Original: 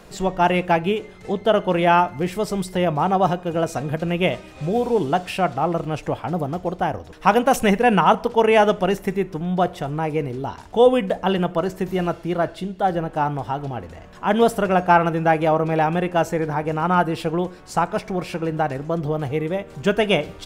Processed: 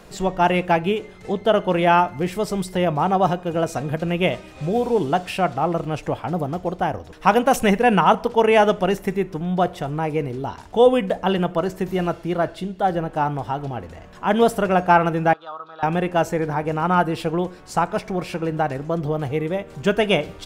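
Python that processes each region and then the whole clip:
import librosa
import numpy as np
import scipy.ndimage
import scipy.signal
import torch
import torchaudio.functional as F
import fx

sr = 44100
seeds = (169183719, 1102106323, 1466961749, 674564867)

y = fx.chain(x, sr, fx.double_bandpass(hz=2200.0, octaves=1.5),
    fx.air_absorb(metres=67.0), at=(15.33, 15.83))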